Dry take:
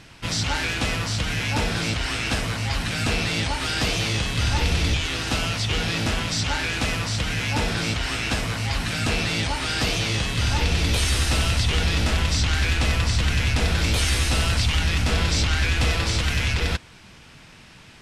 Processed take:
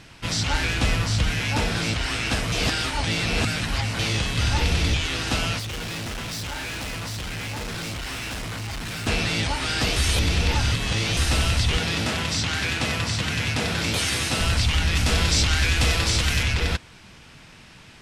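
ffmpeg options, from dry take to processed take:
-filter_complex "[0:a]asettb=1/sr,asplit=3[a][b][c];[a]atrim=end=0.534[d];[b]atrim=start=0.53:end=1.3,asetpts=PTS-STARTPTS,afade=t=in:d=0.004:c=qsin,afade=t=out:st=0.766:d=0.004:c=qsin,lowshelf=f=100:g=8.5[e];[c]atrim=start=1.296[f];[d][e]acrossfade=d=0.004:c1=hsin:c2=qsin[g];[g][f]acrossfade=d=0.004:c1=qsin:c2=hsin,asettb=1/sr,asplit=3[h][i][j];[h]atrim=end=5.594[k];[i]atrim=start=5.59:end=9.07,asetpts=PTS-STARTPTS,afade=t=in:d=0.004:c=qsin,afade=t=out:st=3.476:d=0.004:c=qsin,asoftclip=type=hard:threshold=-29.5dB[l];[j]atrim=start=9.066[m];[k][l]acrossfade=d=0.004:c1=hsin:c2=qsin[n];[n][m]acrossfade=d=0.004:c1=qsin:c2=hsin,asettb=1/sr,asplit=3[o][p][q];[o]atrim=end=11.774[r];[p]atrim=start=11.77:end=14.41,asetpts=PTS-STARTPTS,afade=t=in:d=0.004:c=qsin,afade=t=out:st=2.636:d=0.004:c=qsin,highpass=f=100:w=0.5412,highpass=f=100:w=1.3066[s];[q]atrim=start=14.406[t];[r][s]acrossfade=d=0.004:c1=hsin:c2=qsin[u];[u][t]acrossfade=d=0.004:c1=qsin:c2=hsin,asettb=1/sr,asplit=3[v][w][x];[v]atrim=end=14.954[y];[w]atrim=start=14.95:end=16.43,asetpts=PTS-STARTPTS,afade=t=in:d=0.004:c=qsin,afade=t=out:st=1.476:d=0.004:c=qsin,highshelf=f=4.2k:g=6.5[z];[x]atrim=start=16.426[aa];[y][z]acrossfade=d=0.004:c1=hsin:c2=qsin[ab];[ab][aa]acrossfade=d=0.004:c1=qsin:c2=hsin,asplit=5[ac][ad][ae][af][ag];[ac]atrim=end=2.522[ah];[ad]atrim=start=2.518:end=3.992,asetpts=PTS-STARTPTS,areverse[ai];[ae]atrim=start=3.988:end=9.962[aj];[af]atrim=start=9.958:end=11.172,asetpts=PTS-STARTPTS,areverse[ak];[ag]atrim=start=11.168[al];[ah][ai]acrossfade=d=0.004:c1=hsin:c2=hsin[am];[am][aj]acrossfade=d=0.004:c1=hsin:c2=hsin[an];[an][ak]acrossfade=d=0.004:c1=hsin:c2=hsin[ao];[ao][al]acrossfade=d=0.004:c1=hsin:c2=hsin"

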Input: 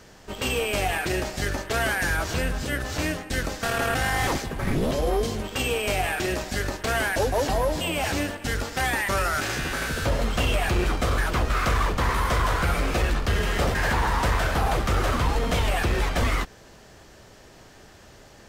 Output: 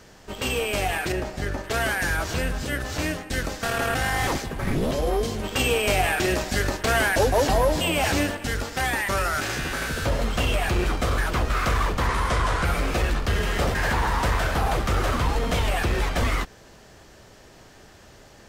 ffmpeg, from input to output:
-filter_complex "[0:a]asettb=1/sr,asplit=3[a][b][c];[a]atrim=end=1.124[d];[b]atrim=start=1.12:end=1.64,asetpts=PTS-STARTPTS,afade=t=in:d=0.004:c=qsin,afade=t=out:st=0.516:d=0.004:c=qsin,highshelf=f=2.4k:g=-9.5[e];[c]atrim=start=1.636[f];[d][e]acrossfade=d=0.004:c1=hsin:c2=qsin[g];[g][f]acrossfade=d=0.004:c1=qsin:c2=hsin,asettb=1/sr,asplit=3[h][i][j];[h]atrim=end=12.074[k];[i]atrim=start=12.07:end=12.65,asetpts=PTS-STARTPTS,afade=t=in:d=0.004:c=qsin,afade=t=out:st=0.576:d=0.004:c=qsin,lowpass=f=11k:w=0.5412,lowpass=f=11k:w=1.3066[l];[j]atrim=start=12.646[m];[k][l]acrossfade=d=0.004:c1=hsin:c2=qsin[n];[n][m]acrossfade=d=0.004:c1=qsin:c2=hsin,asplit=3[o][p][q];[o]atrim=end=5.432[r];[p]atrim=start=5.428:end=8.452,asetpts=PTS-STARTPTS,volume=3.5dB[s];[q]atrim=start=8.448[t];[r][s]acrossfade=d=0.004:c1=hsin:c2=hsin[u];[u][t]acrossfade=d=0.004:c1=hsin:c2=hsin"

